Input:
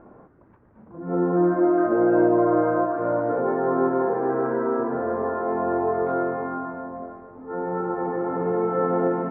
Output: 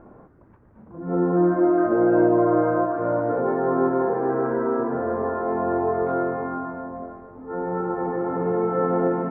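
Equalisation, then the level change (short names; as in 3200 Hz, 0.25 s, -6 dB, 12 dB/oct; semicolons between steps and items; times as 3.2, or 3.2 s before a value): low shelf 120 Hz +6.5 dB; 0.0 dB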